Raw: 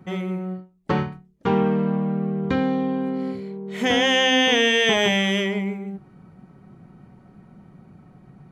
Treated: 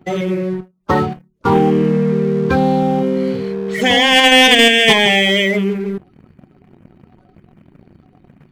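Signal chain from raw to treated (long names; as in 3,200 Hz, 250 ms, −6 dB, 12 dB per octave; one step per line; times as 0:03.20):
spectral magnitudes quantised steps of 30 dB
mains-hum notches 60/120/180/240/300/360 Hz
in parallel at +0.5 dB: output level in coarse steps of 19 dB
on the sum: leveller curve on the samples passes 2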